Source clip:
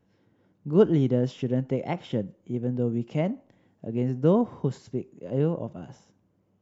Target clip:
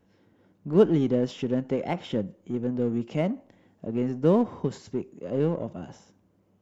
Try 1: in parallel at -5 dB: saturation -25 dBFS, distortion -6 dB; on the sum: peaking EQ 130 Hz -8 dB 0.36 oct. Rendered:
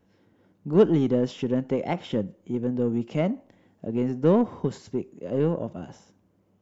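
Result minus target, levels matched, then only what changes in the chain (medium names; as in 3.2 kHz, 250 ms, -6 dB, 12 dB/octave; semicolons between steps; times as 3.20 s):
saturation: distortion -5 dB
change: saturation -36 dBFS, distortion -1 dB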